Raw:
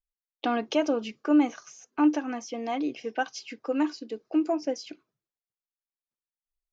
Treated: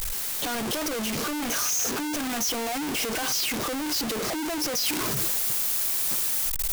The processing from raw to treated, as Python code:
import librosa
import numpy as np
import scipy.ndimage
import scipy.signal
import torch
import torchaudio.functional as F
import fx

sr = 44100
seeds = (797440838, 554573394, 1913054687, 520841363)

y = np.sign(x) * np.sqrt(np.mean(np.square(x)))
y = fx.high_shelf(y, sr, hz=5800.0, db=fx.steps((0.0, 7.0), (4.85, 12.0)))